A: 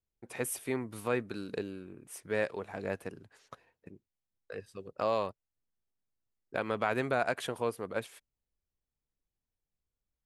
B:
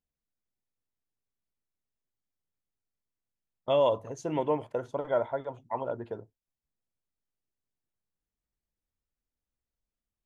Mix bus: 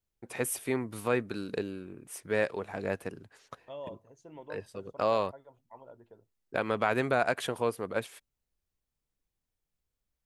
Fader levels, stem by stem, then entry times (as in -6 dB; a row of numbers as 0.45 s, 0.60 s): +3.0 dB, -18.0 dB; 0.00 s, 0.00 s